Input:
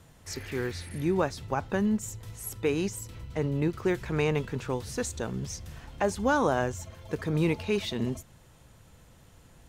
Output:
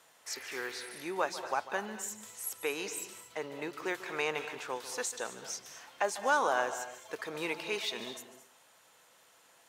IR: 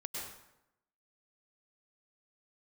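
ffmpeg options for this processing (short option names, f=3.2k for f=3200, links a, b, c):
-filter_complex "[0:a]highpass=670,asplit=2[a][b];[1:a]atrim=start_sample=2205,asetrate=79380,aresample=44100,adelay=146[c];[b][c]afir=irnorm=-1:irlink=0,volume=-5dB[d];[a][d]amix=inputs=2:normalize=0"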